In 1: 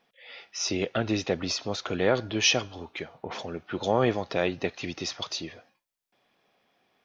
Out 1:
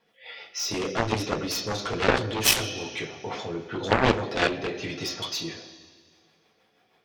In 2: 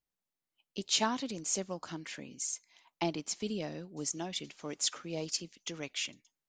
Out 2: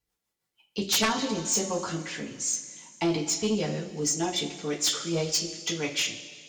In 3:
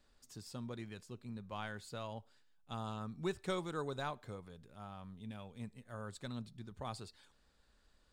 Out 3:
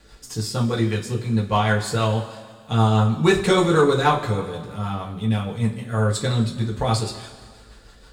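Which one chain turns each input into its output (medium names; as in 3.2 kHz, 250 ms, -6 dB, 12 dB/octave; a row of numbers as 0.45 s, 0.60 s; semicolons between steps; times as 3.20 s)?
rotary cabinet horn 6.3 Hz; two-slope reverb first 0.23 s, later 1.9 s, from -18 dB, DRR -3.5 dB; Chebyshev shaper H 7 -10 dB, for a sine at -7 dBFS; peak normalisation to -6 dBFS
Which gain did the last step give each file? 0.0 dB, +5.5 dB, +19.0 dB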